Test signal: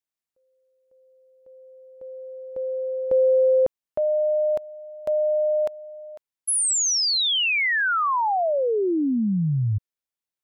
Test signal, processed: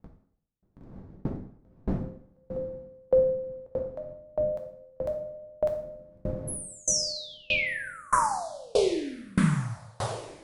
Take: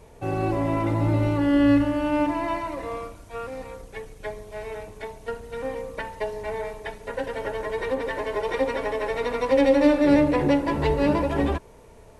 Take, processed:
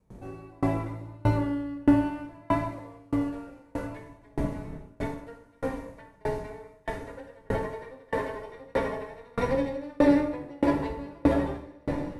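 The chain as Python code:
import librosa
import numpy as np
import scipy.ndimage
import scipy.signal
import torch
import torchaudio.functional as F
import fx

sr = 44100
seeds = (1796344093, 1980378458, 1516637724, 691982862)

y = fx.dmg_wind(x, sr, seeds[0], corner_hz=210.0, level_db=-37.0)
y = fx.gate_hold(y, sr, open_db=-33.0, close_db=-35.0, hold_ms=14.0, range_db=-23, attack_ms=0.39, release_ms=27.0)
y = fx.peak_eq(y, sr, hz=2900.0, db=-4.5, octaves=0.66)
y = fx.echo_diffused(y, sr, ms=1611, feedback_pct=52, wet_db=-11.0)
y = fx.rev_plate(y, sr, seeds[1], rt60_s=1.3, hf_ratio=0.75, predelay_ms=0, drr_db=0.0)
y = fx.dynamic_eq(y, sr, hz=6200.0, q=1.2, threshold_db=-44.0, ratio=4.0, max_db=-3)
y = fx.tremolo_decay(y, sr, direction='decaying', hz=1.6, depth_db=32)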